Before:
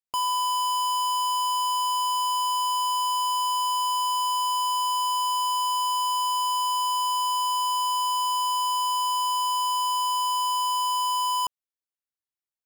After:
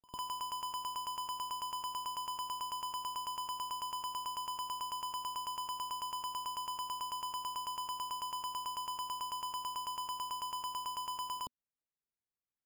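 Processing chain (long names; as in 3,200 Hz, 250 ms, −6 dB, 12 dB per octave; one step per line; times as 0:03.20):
drawn EQ curve 240 Hz 0 dB, 1,400 Hz −21 dB, 10,000 Hz −15 dB
decimation without filtering 11×
echo ahead of the sound 101 ms −21 dB
level +1.5 dB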